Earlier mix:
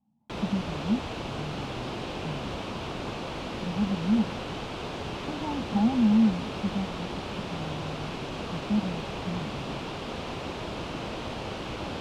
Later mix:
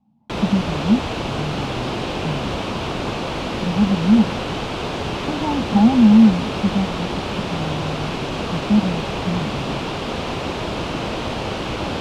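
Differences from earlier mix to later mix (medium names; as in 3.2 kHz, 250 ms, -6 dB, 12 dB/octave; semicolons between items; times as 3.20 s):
speech +10.5 dB; background +10.0 dB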